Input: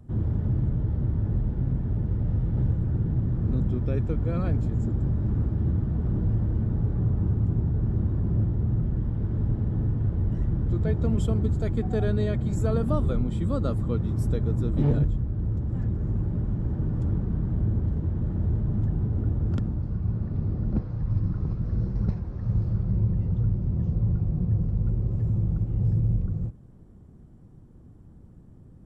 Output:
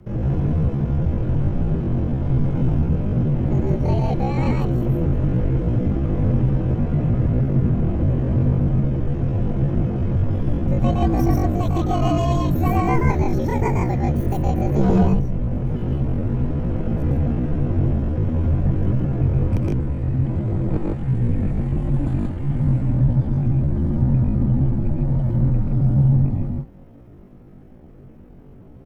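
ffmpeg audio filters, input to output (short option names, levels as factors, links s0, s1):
-af "aecho=1:1:116.6|151.6:0.708|0.794,asetrate=78577,aresample=44100,atempo=0.561231,afreqshift=-66,volume=1.41"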